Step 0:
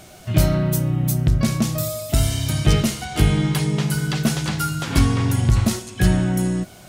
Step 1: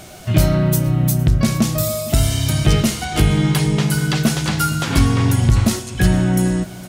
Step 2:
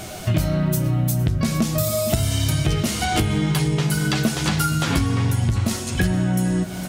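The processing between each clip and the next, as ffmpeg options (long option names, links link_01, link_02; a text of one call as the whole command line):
ffmpeg -i in.wav -filter_complex "[0:a]aecho=1:1:461:0.1,asplit=2[link_01][link_02];[link_02]alimiter=limit=-13.5dB:level=0:latency=1:release=382,volume=2dB[link_03];[link_01][link_03]amix=inputs=2:normalize=0,volume=-1.5dB" out.wav
ffmpeg -i in.wav -af "flanger=delay=9.3:depth=3.1:regen=-43:speed=0.94:shape=sinusoidal,acompressor=threshold=-26dB:ratio=6,volume=8.5dB" out.wav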